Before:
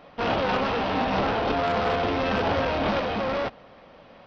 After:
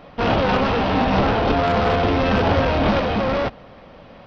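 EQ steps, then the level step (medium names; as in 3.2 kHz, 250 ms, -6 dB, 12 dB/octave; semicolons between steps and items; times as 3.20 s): bass shelf 200 Hz +8.5 dB; +4.5 dB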